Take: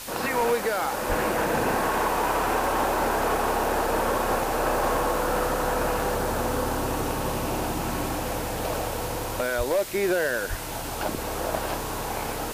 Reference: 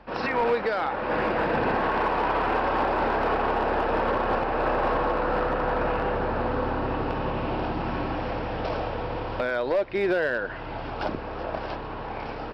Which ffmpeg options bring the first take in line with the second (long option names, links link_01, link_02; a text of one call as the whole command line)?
ffmpeg -i in.wav -filter_complex "[0:a]adeclick=threshold=4,asplit=3[link_01][link_02][link_03];[link_01]afade=type=out:start_time=1.08:duration=0.02[link_04];[link_02]highpass=frequency=140:width=0.5412,highpass=frequency=140:width=1.3066,afade=type=in:start_time=1.08:duration=0.02,afade=type=out:start_time=1.2:duration=0.02[link_05];[link_03]afade=type=in:start_time=1.2:duration=0.02[link_06];[link_04][link_05][link_06]amix=inputs=3:normalize=0,asplit=3[link_07][link_08][link_09];[link_07]afade=type=out:start_time=9.57:duration=0.02[link_10];[link_08]highpass=frequency=140:width=0.5412,highpass=frequency=140:width=1.3066,afade=type=in:start_time=9.57:duration=0.02,afade=type=out:start_time=9.69:duration=0.02[link_11];[link_09]afade=type=in:start_time=9.69:duration=0.02[link_12];[link_10][link_11][link_12]amix=inputs=3:normalize=0,asplit=3[link_13][link_14][link_15];[link_13]afade=type=out:start_time=10.49:duration=0.02[link_16];[link_14]highpass=frequency=140:width=0.5412,highpass=frequency=140:width=1.3066,afade=type=in:start_time=10.49:duration=0.02,afade=type=out:start_time=10.61:duration=0.02[link_17];[link_15]afade=type=in:start_time=10.61:duration=0.02[link_18];[link_16][link_17][link_18]amix=inputs=3:normalize=0,afwtdn=0.014,asetnsamples=nb_out_samples=441:pad=0,asendcmd='11.18 volume volume -3dB',volume=0dB" out.wav